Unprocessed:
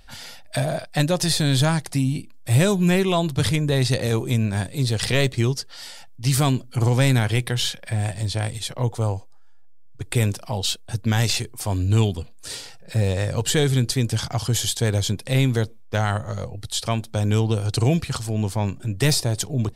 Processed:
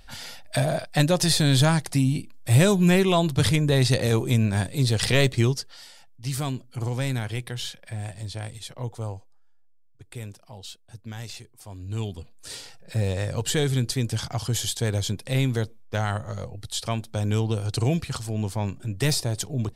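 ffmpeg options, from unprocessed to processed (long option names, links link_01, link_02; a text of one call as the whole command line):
ffmpeg -i in.wav -af "volume=12.5dB,afade=type=out:start_time=5.43:duration=0.44:silence=0.354813,afade=type=out:start_time=9.07:duration=0.98:silence=0.421697,afade=type=in:start_time=11.79:duration=0.82:silence=0.237137" out.wav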